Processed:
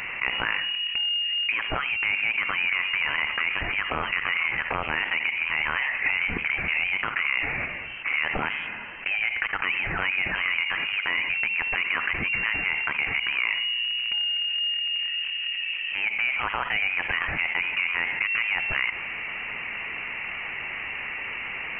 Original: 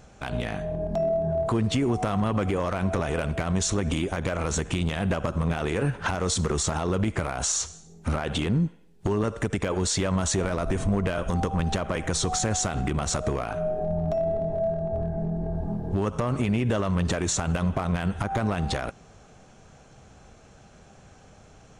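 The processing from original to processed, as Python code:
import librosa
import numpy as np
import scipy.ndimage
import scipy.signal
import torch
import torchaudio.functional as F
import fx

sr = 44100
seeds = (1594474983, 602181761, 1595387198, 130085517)

y = scipy.signal.sosfilt(scipy.signal.butter(4, 790.0, 'highpass', fs=sr, output='sos'), x)
y = fx.peak_eq(y, sr, hz=1300.0, db=10.5, octaves=1.7)
y = fx.freq_invert(y, sr, carrier_hz=3500)
y = fx.env_flatten(y, sr, amount_pct=70)
y = y * librosa.db_to_amplitude(-6.5)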